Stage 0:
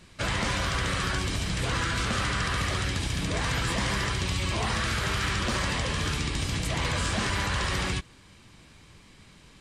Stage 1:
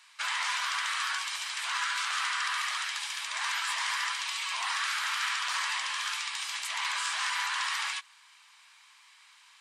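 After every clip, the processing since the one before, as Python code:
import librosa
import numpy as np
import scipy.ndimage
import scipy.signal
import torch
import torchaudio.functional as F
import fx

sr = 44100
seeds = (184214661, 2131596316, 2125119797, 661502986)

y = scipy.signal.sosfilt(scipy.signal.cheby1(4, 1.0, 930.0, 'highpass', fs=sr, output='sos'), x)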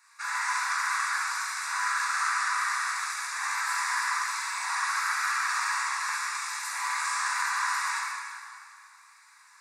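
y = fx.fixed_phaser(x, sr, hz=1300.0, stages=4)
y = fx.rev_plate(y, sr, seeds[0], rt60_s=2.3, hf_ratio=0.8, predelay_ms=0, drr_db=-6.5)
y = y * 10.0 ** (-1.5 / 20.0)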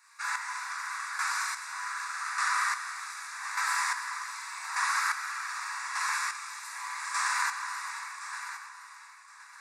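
y = fx.chopper(x, sr, hz=0.84, depth_pct=60, duty_pct=30)
y = fx.echo_feedback(y, sr, ms=1068, feedback_pct=23, wet_db=-12)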